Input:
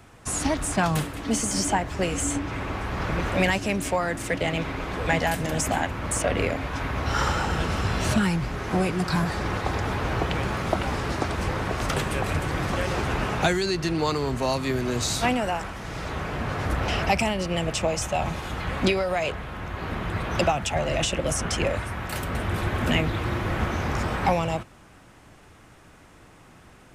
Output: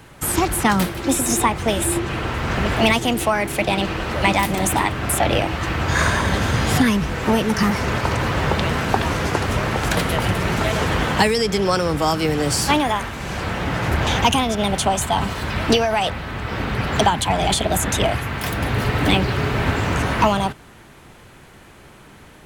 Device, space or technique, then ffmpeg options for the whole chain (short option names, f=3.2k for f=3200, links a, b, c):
nightcore: -af "asetrate=52920,aresample=44100,volume=6dB"